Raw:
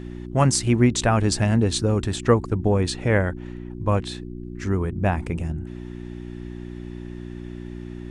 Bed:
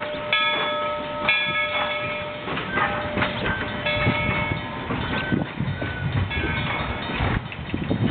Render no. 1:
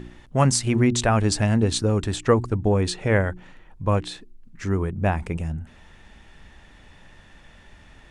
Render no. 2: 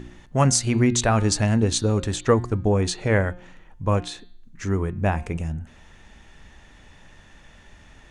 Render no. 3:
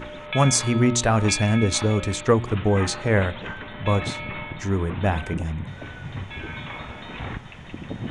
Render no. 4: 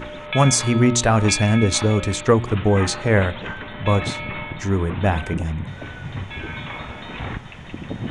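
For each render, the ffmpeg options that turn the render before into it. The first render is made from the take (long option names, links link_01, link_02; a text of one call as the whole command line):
ffmpeg -i in.wav -af "bandreject=frequency=60:width_type=h:width=4,bandreject=frequency=120:width_type=h:width=4,bandreject=frequency=180:width_type=h:width=4,bandreject=frequency=240:width_type=h:width=4,bandreject=frequency=300:width_type=h:width=4,bandreject=frequency=360:width_type=h:width=4" out.wav
ffmpeg -i in.wav -af "equalizer=frequency=6400:width=4.2:gain=6,bandreject=frequency=177.5:width_type=h:width=4,bandreject=frequency=355:width_type=h:width=4,bandreject=frequency=532.5:width_type=h:width=4,bandreject=frequency=710:width_type=h:width=4,bandreject=frequency=887.5:width_type=h:width=4,bandreject=frequency=1065:width_type=h:width=4,bandreject=frequency=1242.5:width_type=h:width=4,bandreject=frequency=1420:width_type=h:width=4,bandreject=frequency=1597.5:width_type=h:width=4,bandreject=frequency=1775:width_type=h:width=4,bandreject=frequency=1952.5:width_type=h:width=4,bandreject=frequency=2130:width_type=h:width=4,bandreject=frequency=2307.5:width_type=h:width=4,bandreject=frequency=2485:width_type=h:width=4,bandreject=frequency=2662.5:width_type=h:width=4,bandreject=frequency=2840:width_type=h:width=4,bandreject=frequency=3017.5:width_type=h:width=4,bandreject=frequency=3195:width_type=h:width=4,bandreject=frequency=3372.5:width_type=h:width=4,bandreject=frequency=3550:width_type=h:width=4,bandreject=frequency=3727.5:width_type=h:width=4,bandreject=frequency=3905:width_type=h:width=4,bandreject=frequency=4082.5:width_type=h:width=4,bandreject=frequency=4260:width_type=h:width=4,bandreject=frequency=4437.5:width_type=h:width=4,bandreject=frequency=4615:width_type=h:width=4" out.wav
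ffmpeg -i in.wav -i bed.wav -filter_complex "[1:a]volume=-9.5dB[link_01];[0:a][link_01]amix=inputs=2:normalize=0" out.wav
ffmpeg -i in.wav -af "volume=3dB,alimiter=limit=-3dB:level=0:latency=1" out.wav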